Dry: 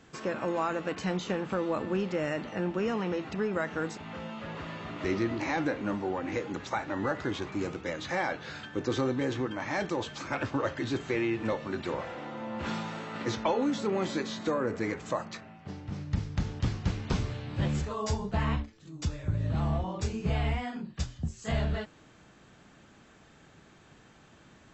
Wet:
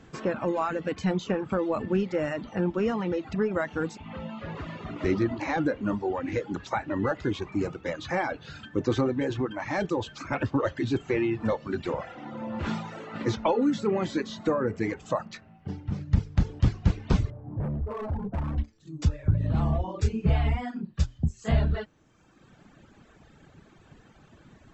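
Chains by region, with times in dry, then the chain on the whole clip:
0:17.30–0:18.58: low-pass filter 1,100 Hz 24 dB per octave + hard clipping −33 dBFS
whole clip: reverb reduction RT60 1.3 s; spectral tilt −1.5 dB per octave; level +3 dB

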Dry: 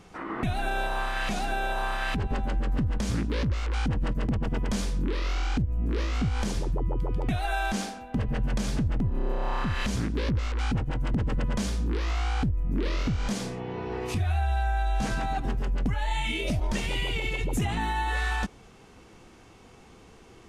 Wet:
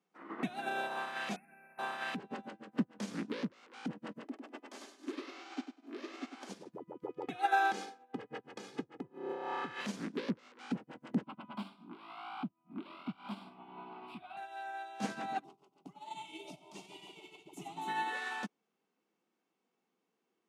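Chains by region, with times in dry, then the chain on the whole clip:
0:01.36–0:01.79: linear-phase brick-wall band-stop 2,700–9,300 Hz + flat-topped bell 630 Hz −12 dB 2.7 octaves
0:04.23–0:06.49: Butterworth high-pass 250 Hz 96 dB per octave + notch comb filter 480 Hz + repeating echo 100 ms, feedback 49%, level −3 dB
0:07.03–0:09.81: high-shelf EQ 6,100 Hz −7 dB + comb filter 2.4 ms, depth 75%
0:11.23–0:14.37: mid-hump overdrive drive 18 dB, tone 1,100 Hz, clips at −18 dBFS + phaser with its sweep stopped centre 1,800 Hz, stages 6
0:15.44–0:17.88: low-shelf EQ 260 Hz −2.5 dB + phaser with its sweep stopped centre 340 Hz, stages 8 + echo machine with several playback heads 93 ms, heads first and third, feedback 45%, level −11 dB
whole clip: Butterworth high-pass 180 Hz 36 dB per octave; high-shelf EQ 7,700 Hz −5.5 dB; expander for the loud parts 2.5 to 1, over −46 dBFS; level +1 dB

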